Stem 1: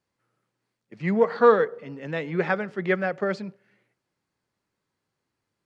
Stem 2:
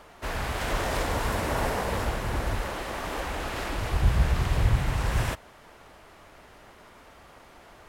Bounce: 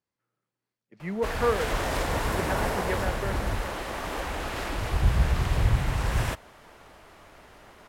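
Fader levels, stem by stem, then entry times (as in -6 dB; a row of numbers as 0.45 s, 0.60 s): -8.5 dB, 0.0 dB; 0.00 s, 1.00 s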